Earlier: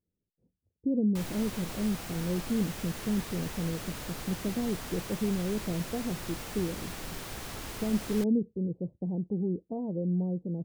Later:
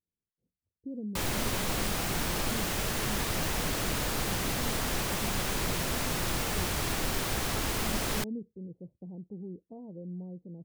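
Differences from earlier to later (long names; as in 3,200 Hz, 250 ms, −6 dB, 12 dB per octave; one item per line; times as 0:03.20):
speech −11.0 dB
background +9.0 dB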